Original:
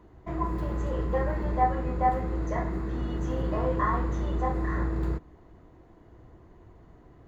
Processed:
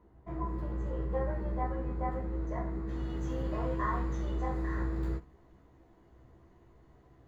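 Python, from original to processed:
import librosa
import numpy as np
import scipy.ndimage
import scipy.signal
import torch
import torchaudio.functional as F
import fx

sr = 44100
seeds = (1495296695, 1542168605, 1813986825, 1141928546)

y = fx.high_shelf(x, sr, hz=2200.0, db=fx.steps((0.0, -8.0), (2.87, 4.0)))
y = fx.room_early_taps(y, sr, ms=(15, 64), db=(-3.5, -15.5))
y = y * librosa.db_to_amplitude(-8.5)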